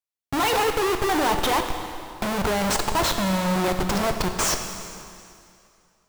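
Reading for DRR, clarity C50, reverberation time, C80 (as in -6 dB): 5.5 dB, 6.5 dB, 2.5 s, 7.5 dB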